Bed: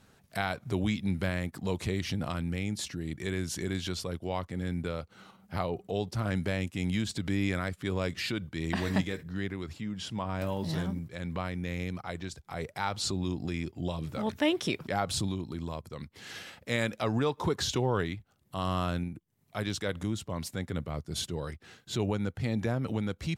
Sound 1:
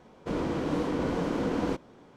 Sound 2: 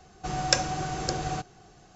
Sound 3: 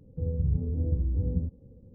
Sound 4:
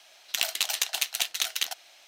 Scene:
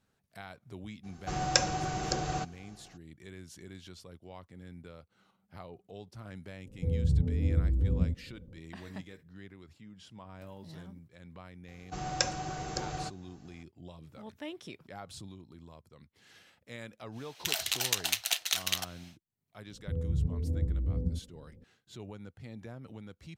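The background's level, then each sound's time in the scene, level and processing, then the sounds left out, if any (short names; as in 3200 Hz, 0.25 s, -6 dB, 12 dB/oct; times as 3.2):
bed -15 dB
1.03 add 2 -2.5 dB, fades 0.02 s
6.65 add 3
11.68 add 2 -6.5 dB
17.11 add 4 -2 dB, fades 0.10 s + limiter -10 dBFS
19.7 add 3 -3.5 dB
not used: 1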